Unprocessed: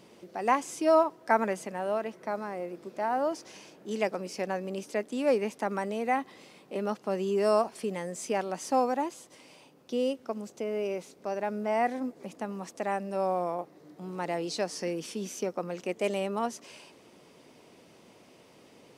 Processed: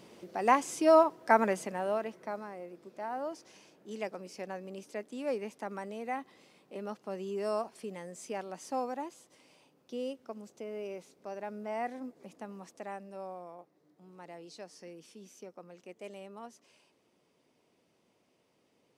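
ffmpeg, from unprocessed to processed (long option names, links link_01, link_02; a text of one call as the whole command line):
ffmpeg -i in.wav -af "volume=0.5dB,afade=type=out:start_time=1.56:duration=1.01:silence=0.354813,afade=type=out:start_time=12.55:duration=0.87:silence=0.421697" out.wav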